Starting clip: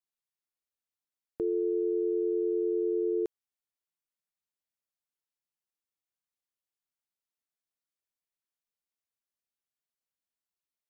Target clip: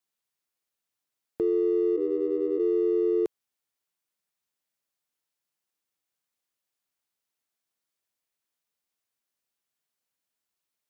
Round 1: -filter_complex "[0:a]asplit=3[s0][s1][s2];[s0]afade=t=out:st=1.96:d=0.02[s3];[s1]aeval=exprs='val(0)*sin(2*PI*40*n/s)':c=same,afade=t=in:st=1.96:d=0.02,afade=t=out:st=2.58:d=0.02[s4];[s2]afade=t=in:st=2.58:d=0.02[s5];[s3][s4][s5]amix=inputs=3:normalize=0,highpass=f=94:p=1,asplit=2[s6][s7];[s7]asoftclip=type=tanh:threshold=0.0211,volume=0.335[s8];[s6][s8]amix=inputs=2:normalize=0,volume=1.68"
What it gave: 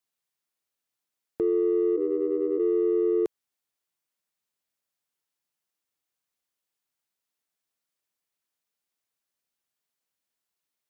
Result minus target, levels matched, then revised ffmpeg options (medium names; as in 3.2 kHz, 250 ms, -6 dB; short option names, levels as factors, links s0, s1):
saturation: distortion -4 dB
-filter_complex "[0:a]asplit=3[s0][s1][s2];[s0]afade=t=out:st=1.96:d=0.02[s3];[s1]aeval=exprs='val(0)*sin(2*PI*40*n/s)':c=same,afade=t=in:st=1.96:d=0.02,afade=t=out:st=2.58:d=0.02[s4];[s2]afade=t=in:st=2.58:d=0.02[s5];[s3][s4][s5]amix=inputs=3:normalize=0,highpass=f=94:p=1,asplit=2[s6][s7];[s7]asoftclip=type=tanh:threshold=0.00841,volume=0.335[s8];[s6][s8]amix=inputs=2:normalize=0,volume=1.68"